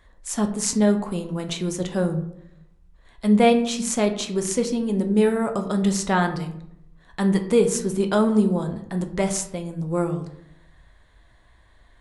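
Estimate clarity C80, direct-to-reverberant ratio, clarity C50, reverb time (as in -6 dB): 13.5 dB, 5.5 dB, 11.0 dB, 0.75 s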